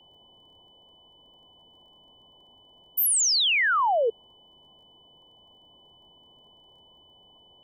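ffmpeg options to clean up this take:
ffmpeg -i in.wav -af "adeclick=threshold=4,bandreject=frequency=3000:width=30,afwtdn=0.0032" out.wav

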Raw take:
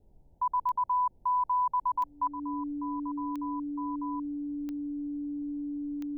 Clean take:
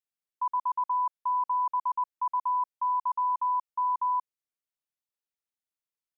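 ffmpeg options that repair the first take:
ffmpeg -i in.wav -af "adeclick=threshold=4,bandreject=frequency=290:width=30,agate=range=-21dB:threshold=-49dB,asetnsamples=nb_out_samples=441:pad=0,asendcmd='2.27 volume volume 11.5dB',volume=0dB" out.wav

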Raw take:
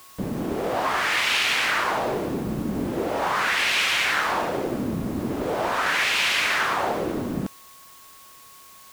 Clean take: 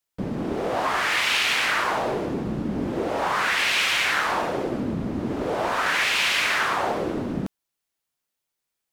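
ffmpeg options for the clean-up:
ffmpeg -i in.wav -af "bandreject=frequency=1100:width=30,afftdn=noise_reduction=30:noise_floor=-48" out.wav

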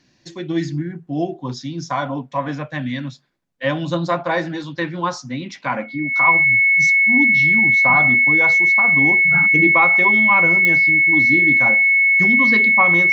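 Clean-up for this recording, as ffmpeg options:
ffmpeg -i in.wav -af "adeclick=threshold=4,bandreject=frequency=2200:width=30" out.wav

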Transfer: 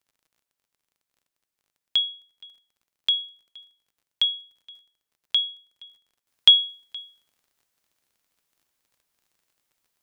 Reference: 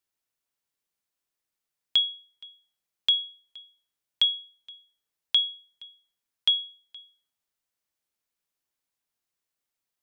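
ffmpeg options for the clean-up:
ffmpeg -i in.wav -af "adeclick=threshold=4,asetnsamples=nb_out_samples=441:pad=0,asendcmd='6.27 volume volume -9dB',volume=0dB" out.wav

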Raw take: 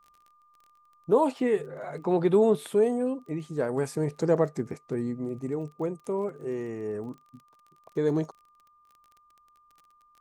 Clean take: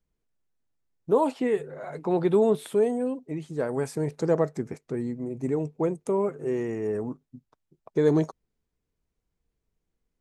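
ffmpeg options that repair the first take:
ffmpeg -i in.wav -af "adeclick=threshold=4,bandreject=frequency=1200:width=30,asetnsamples=nb_out_samples=441:pad=0,asendcmd='5.39 volume volume 4.5dB',volume=0dB" out.wav

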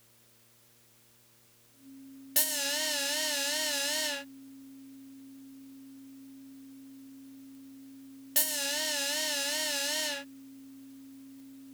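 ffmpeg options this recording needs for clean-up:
ffmpeg -i in.wav -af "adeclick=threshold=4,bandreject=frequency=117.4:width_type=h:width=4,bandreject=frequency=234.8:width_type=h:width=4,bandreject=frequency=352.2:width_type=h:width=4,bandreject=frequency=469.6:width_type=h:width=4,bandreject=frequency=587:width_type=h:width=4,bandreject=frequency=270:width=30,agate=range=-21dB:threshold=-54dB" out.wav

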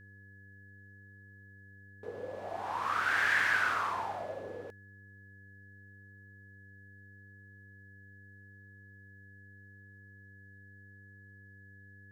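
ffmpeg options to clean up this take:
ffmpeg -i in.wav -af "bandreject=frequency=99.2:width_type=h:width=4,bandreject=frequency=198.4:width_type=h:width=4,bandreject=frequency=297.6:width_type=h:width=4,bandreject=frequency=396.8:width_type=h:width=4,bandreject=frequency=496:width_type=h:width=4,bandreject=frequency=1700:width=30" out.wav

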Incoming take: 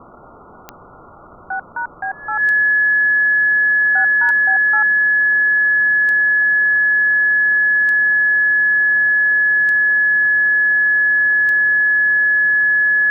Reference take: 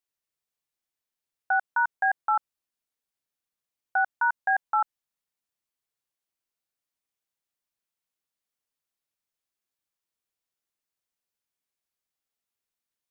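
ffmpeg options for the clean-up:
ffmpeg -i in.wav -af "adeclick=threshold=4,bandreject=frequency=1700:width=30,afwtdn=0.032" out.wav

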